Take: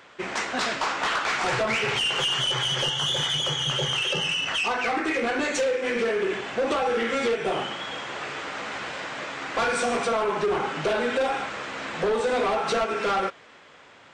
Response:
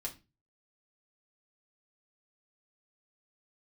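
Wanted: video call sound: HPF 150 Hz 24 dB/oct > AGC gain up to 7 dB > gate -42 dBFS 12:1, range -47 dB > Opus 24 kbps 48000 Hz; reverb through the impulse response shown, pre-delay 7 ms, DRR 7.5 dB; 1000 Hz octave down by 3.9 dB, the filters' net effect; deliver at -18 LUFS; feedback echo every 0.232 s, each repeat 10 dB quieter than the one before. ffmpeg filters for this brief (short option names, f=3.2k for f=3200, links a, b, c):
-filter_complex "[0:a]equalizer=f=1k:t=o:g=-5.5,aecho=1:1:232|464|696|928:0.316|0.101|0.0324|0.0104,asplit=2[a][b];[1:a]atrim=start_sample=2205,adelay=7[c];[b][c]afir=irnorm=-1:irlink=0,volume=-6.5dB[d];[a][d]amix=inputs=2:normalize=0,highpass=f=150:w=0.5412,highpass=f=150:w=1.3066,dynaudnorm=m=7dB,agate=range=-47dB:threshold=-42dB:ratio=12,volume=7.5dB" -ar 48000 -c:a libopus -b:a 24k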